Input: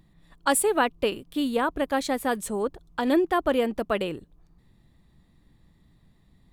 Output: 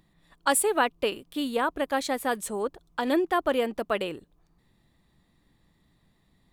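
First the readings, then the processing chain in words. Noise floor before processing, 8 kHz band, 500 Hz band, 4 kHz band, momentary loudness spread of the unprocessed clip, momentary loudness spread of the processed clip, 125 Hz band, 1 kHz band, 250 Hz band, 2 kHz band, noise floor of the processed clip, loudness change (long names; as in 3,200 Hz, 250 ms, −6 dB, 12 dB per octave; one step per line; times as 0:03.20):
−62 dBFS, 0.0 dB, −2.0 dB, 0.0 dB, 8 LU, 9 LU, −6.0 dB, −0.5 dB, −4.0 dB, 0.0 dB, −68 dBFS, −1.5 dB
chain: low-shelf EQ 240 Hz −9 dB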